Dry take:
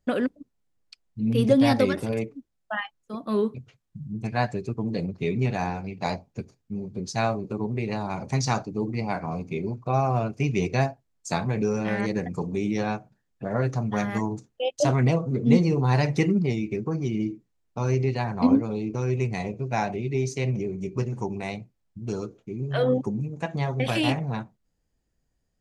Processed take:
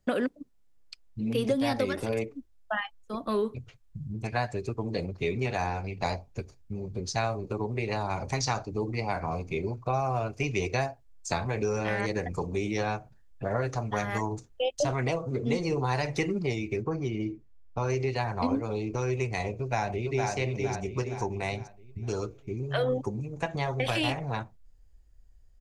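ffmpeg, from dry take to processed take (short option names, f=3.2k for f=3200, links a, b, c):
-filter_complex "[0:a]asettb=1/sr,asplit=3[a][b][c];[a]atrim=end=16.824[d];[b]atrim=start=16.82:end=17.9,asetpts=PTS-STARTPTS,afade=t=in:d=0.004:c=qsin,afade=t=out:st=1.076:d=0.004:c=qsin,highshelf=f=4.5k:g=-11[e];[c]atrim=start=17.896[f];[d][e]acrossfade=d=0.004:c1=hsin:c2=qsin[g];[g][f]acrossfade=d=0.004:c1=qsin:c2=hsin,asplit=2[h][i];[i]afade=t=in:st=19.59:d=0.01,afade=t=out:st=20.29:d=0.01,aecho=0:1:460|920|1380|1840|2300:0.668344|0.267338|0.106935|0.042774|0.0171096[j];[h][j]amix=inputs=2:normalize=0,asubboost=boost=11:cutoff=56,acrossover=split=300|7200[k][l][m];[k]acompressor=threshold=-37dB:ratio=4[n];[l]acompressor=threshold=-29dB:ratio=4[o];[m]acompressor=threshold=-54dB:ratio=4[p];[n][o][p]amix=inputs=3:normalize=0,volume=2.5dB"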